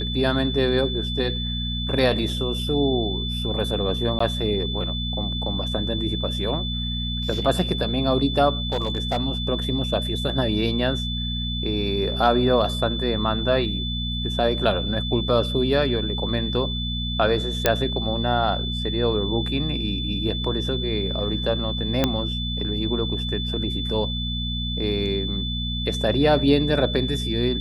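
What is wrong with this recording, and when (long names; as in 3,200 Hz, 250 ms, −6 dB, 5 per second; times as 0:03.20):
mains hum 60 Hz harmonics 4 −28 dBFS
whistle 3,500 Hz −29 dBFS
0:04.19–0:04.20: drop-out 14 ms
0:08.70–0:09.18: clipping −18.5 dBFS
0:17.66: click −1 dBFS
0:22.04: click −5 dBFS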